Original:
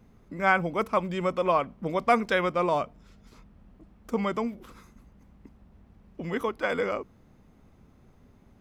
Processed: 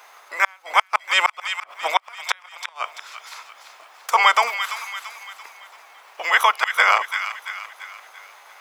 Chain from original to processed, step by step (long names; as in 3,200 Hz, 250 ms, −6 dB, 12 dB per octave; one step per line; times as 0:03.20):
ceiling on every frequency bin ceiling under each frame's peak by 14 dB
gate with flip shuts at −14 dBFS, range −39 dB
high-pass filter 810 Hz 24 dB per octave
on a send: delay with a high-pass on its return 339 ms, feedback 47%, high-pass 1,500 Hz, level −8 dB
on the sum: boost into a limiter +17.5 dB
level −1 dB